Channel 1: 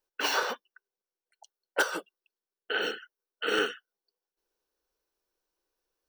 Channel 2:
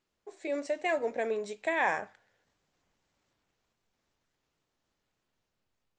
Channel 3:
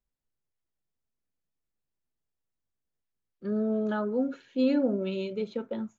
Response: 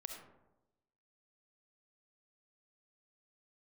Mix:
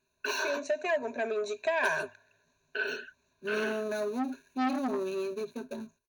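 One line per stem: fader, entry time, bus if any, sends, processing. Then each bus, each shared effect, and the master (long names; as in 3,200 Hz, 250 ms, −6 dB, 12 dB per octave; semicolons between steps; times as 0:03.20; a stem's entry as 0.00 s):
−1.0 dB, 0.05 s, no send, downward compressor, threshold −27 dBFS, peak gain reduction 7 dB; flanger 1.6 Hz, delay 3.7 ms, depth 9.4 ms, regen +70%
+0.5 dB, 0.00 s, no send, downward compressor 2 to 1, threshold −33 dBFS, peak gain reduction 6 dB
−6.0 dB, 0.00 s, no send, gap after every zero crossing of 0.14 ms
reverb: not used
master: EQ curve with evenly spaced ripples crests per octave 1.5, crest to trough 18 dB; saturating transformer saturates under 1,200 Hz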